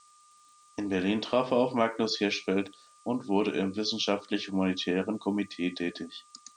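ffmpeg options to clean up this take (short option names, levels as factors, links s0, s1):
-af "adeclick=t=4,bandreject=f=1200:w=30,afftdn=nr=15:nf=-59"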